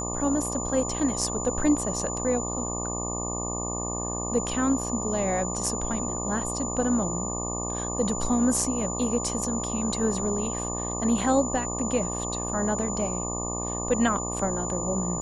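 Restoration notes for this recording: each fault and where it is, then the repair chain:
buzz 60 Hz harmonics 20 -33 dBFS
tone 7000 Hz -32 dBFS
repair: de-hum 60 Hz, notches 20; notch 7000 Hz, Q 30

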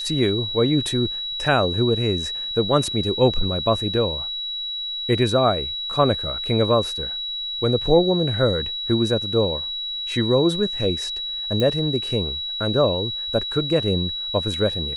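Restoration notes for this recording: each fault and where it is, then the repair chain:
tone 3900 Hz -26 dBFS
11.6 pop -11 dBFS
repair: de-click; notch 3900 Hz, Q 30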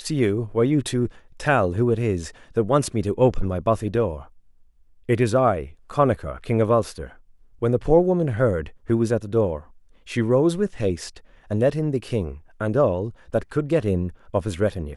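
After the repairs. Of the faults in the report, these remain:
none

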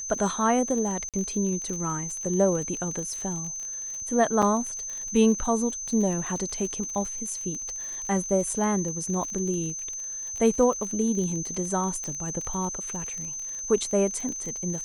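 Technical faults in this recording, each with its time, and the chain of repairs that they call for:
crackle 35/s -32 dBFS
tone 6200 Hz -32 dBFS
1.09–1.14 gap 47 ms
4.42–4.43 gap 5.8 ms
12.04 pop -21 dBFS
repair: de-click; notch 6200 Hz, Q 30; interpolate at 1.09, 47 ms; interpolate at 4.42, 5.8 ms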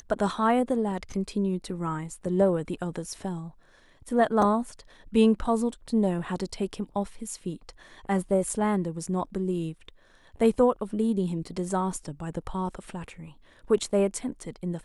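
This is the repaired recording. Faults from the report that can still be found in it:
none

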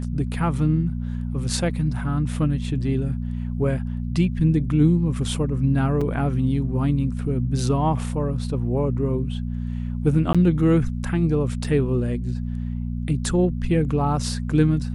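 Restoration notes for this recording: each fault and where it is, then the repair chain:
hum 60 Hz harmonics 4 -27 dBFS
6.01 gap 4.8 ms
10.33–10.35 gap 16 ms
11.64 gap 4.8 ms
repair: de-hum 60 Hz, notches 4; interpolate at 6.01, 4.8 ms; interpolate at 10.33, 16 ms; interpolate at 11.64, 4.8 ms

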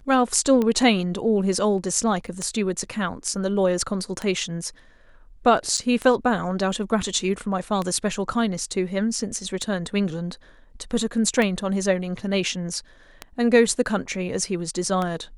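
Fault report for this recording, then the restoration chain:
tick 33 1/3 rpm -13 dBFS
2.27–2.28 gap 6.9 ms
5.77–5.78 gap 7 ms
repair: de-click; interpolate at 2.27, 6.9 ms; interpolate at 5.77, 7 ms

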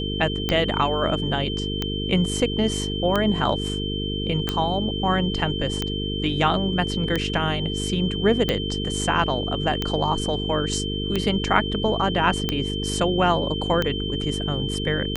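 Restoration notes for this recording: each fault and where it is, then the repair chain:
buzz 50 Hz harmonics 9 -28 dBFS
tick 45 rpm -9 dBFS
tone 3100 Hz -30 dBFS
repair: de-click; notch 3100 Hz, Q 30; de-hum 50 Hz, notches 9

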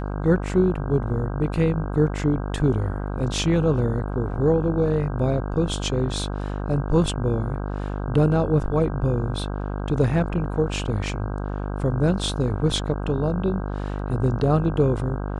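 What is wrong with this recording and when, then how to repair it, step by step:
buzz 50 Hz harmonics 32 -28 dBFS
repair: de-hum 50 Hz, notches 32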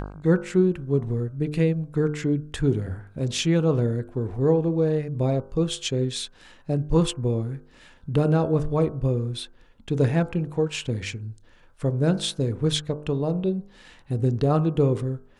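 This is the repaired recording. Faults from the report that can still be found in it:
none

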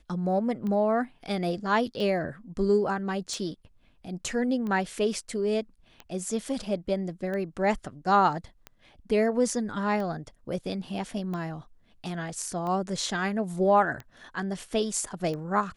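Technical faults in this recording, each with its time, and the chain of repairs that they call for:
tick 45 rpm -24 dBFS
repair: de-click

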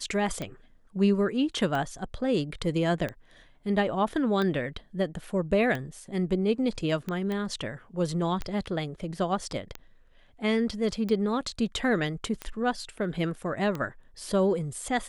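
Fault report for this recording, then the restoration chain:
tick 45 rpm -19 dBFS
7.32 pop -21 dBFS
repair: de-click

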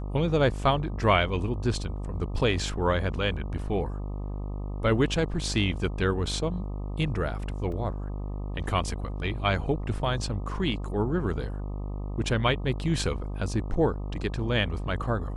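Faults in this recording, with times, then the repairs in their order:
buzz 50 Hz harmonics 25 -33 dBFS
7.72 gap 2.6 ms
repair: de-hum 50 Hz, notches 25; interpolate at 7.72, 2.6 ms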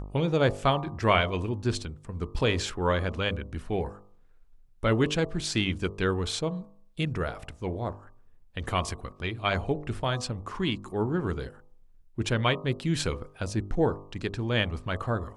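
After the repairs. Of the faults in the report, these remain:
none

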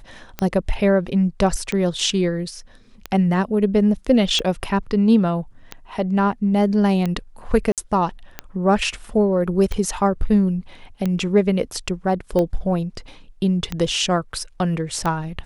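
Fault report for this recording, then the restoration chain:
tick 45 rpm -11 dBFS
7.72–7.78 gap 57 ms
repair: de-click; interpolate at 7.72, 57 ms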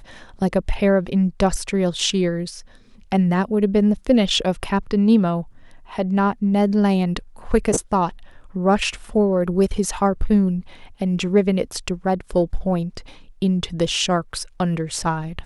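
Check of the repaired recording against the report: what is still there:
none

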